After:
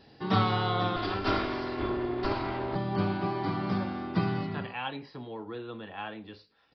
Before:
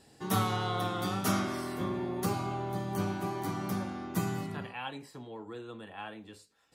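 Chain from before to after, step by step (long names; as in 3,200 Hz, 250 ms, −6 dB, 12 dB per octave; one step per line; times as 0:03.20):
0:00.96–0:02.76: lower of the sound and its delayed copy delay 2.9 ms
downsampling to 11,025 Hz
level +4 dB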